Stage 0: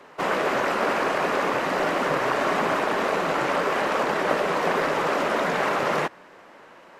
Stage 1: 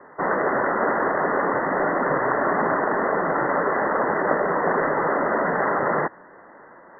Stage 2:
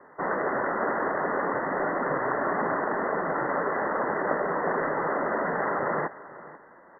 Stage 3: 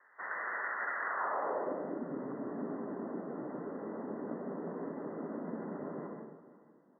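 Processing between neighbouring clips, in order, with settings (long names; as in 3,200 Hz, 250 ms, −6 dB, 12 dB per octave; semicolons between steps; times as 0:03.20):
Chebyshev low-pass filter 2,000 Hz, order 10; level +2.5 dB
single-tap delay 490 ms −17.5 dB; level −5.5 dB
band-pass filter sweep 1,800 Hz → 240 Hz, 0:00.99–0:01.85; dense smooth reverb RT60 0.77 s, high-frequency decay 0.8×, pre-delay 110 ms, DRR 1 dB; level −4.5 dB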